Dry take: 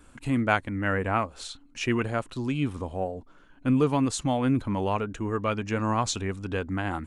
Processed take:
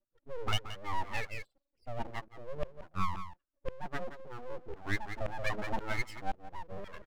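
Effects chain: spectral contrast raised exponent 2.8; LFO band-pass saw down 1.9 Hz 360–2200 Hz; echo 0.175 s -11.5 dB; low-pass opened by the level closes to 540 Hz, open at -28 dBFS; rotary speaker horn 1.2 Hz, later 6.3 Hz, at 4.32; full-wave rectifier; 5.16–5.92 fast leveller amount 50%; gain +5 dB

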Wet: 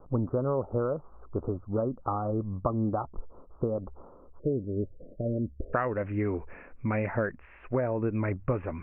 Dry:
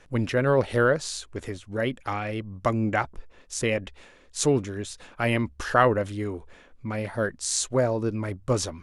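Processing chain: compressor 10:1, threshold -29 dBFS, peak gain reduction 16 dB; steep low-pass 1300 Hz 96 dB/oct, from 4.38 s 630 Hz, from 5.73 s 2600 Hz; gain +4.5 dB

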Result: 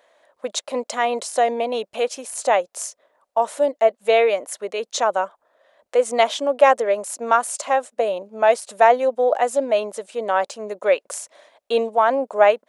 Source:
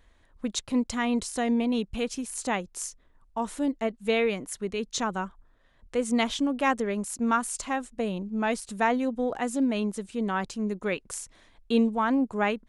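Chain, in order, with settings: resonant high-pass 590 Hz, resonance Q 4.9; gain +5 dB

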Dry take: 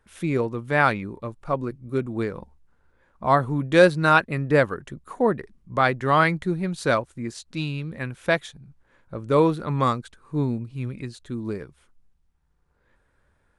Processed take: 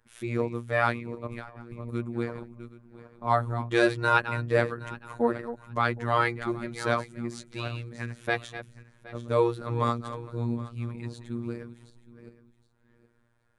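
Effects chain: regenerating reverse delay 0.384 s, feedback 43%, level -12 dB; robotiser 118 Hz; 1.27–1.91 negative-ratio compressor -39 dBFS, ratio -1; gain -3 dB

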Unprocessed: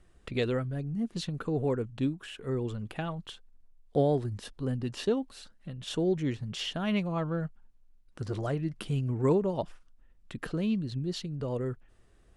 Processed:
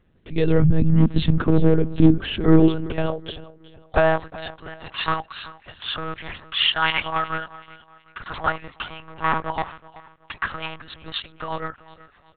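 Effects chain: AGC gain up to 12 dB; hard clip -14.5 dBFS, distortion -12 dB; rotary speaker horn 0.7 Hz, later 8 Hz, at 9.02; high-pass sweep 97 Hz -> 1100 Hz, 1.33–4.4; on a send: feedback echo 0.374 s, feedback 35%, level -18.5 dB; on the sum: monotone LPC vocoder at 8 kHz 160 Hz; gain +4.5 dB

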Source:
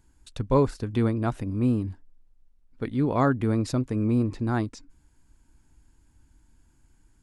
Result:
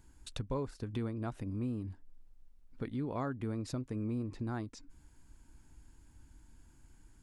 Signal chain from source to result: compressor 3:1, threshold -40 dBFS, peak gain reduction 17.5 dB; gain +1 dB

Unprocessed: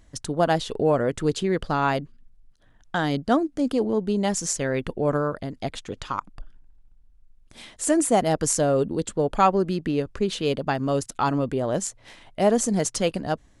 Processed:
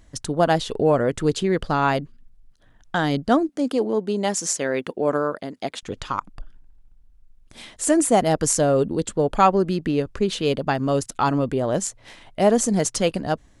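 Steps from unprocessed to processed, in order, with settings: 3.49–5.83 HPF 240 Hz 12 dB/oct; gain +2.5 dB

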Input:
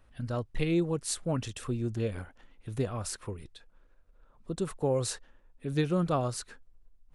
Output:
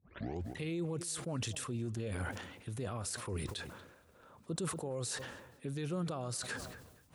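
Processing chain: tape start at the beginning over 0.52 s; HPF 84 Hz 24 dB/oct; high shelf 4600 Hz +7 dB; reverse; compressor 6:1, threshold -42 dBFS, peak gain reduction 18 dB; reverse; limiter -40 dBFS, peak gain reduction 11 dB; darkening echo 0.235 s, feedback 31%, low-pass 2500 Hz, level -22 dB; sustainer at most 53 dB/s; gain +10 dB

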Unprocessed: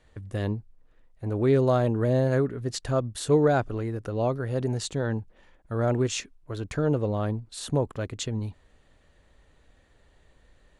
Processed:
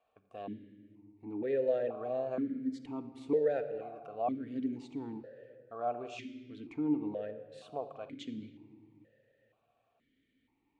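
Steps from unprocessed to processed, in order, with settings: 2.38–2.84 fixed phaser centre 540 Hz, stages 8; reverb RT60 2.0 s, pre-delay 4 ms, DRR 7.5 dB; vowel sequencer 2.1 Hz

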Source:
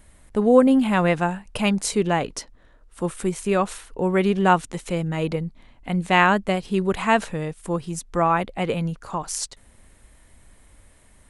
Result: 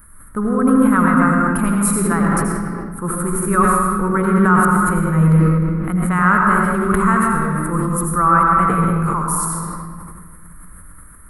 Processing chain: limiter -12.5 dBFS, peak gain reduction 10 dB; EQ curve 200 Hz 0 dB, 750 Hz -12 dB, 1300 Hz +13 dB, 2800 Hz -19 dB, 6200 Hz -16 dB, 11000 Hz +14 dB; reverb RT60 2.1 s, pre-delay 76 ms, DRR -2 dB; sustainer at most 22 dB/s; gain +3 dB

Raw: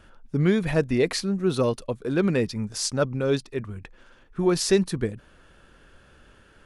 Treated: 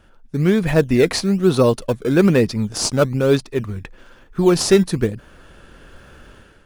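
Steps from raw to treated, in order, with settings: AGC gain up to 10 dB; in parallel at -11.5 dB: decimation with a swept rate 17×, swing 100% 1.1 Hz; on the sum: gain -1.5 dB

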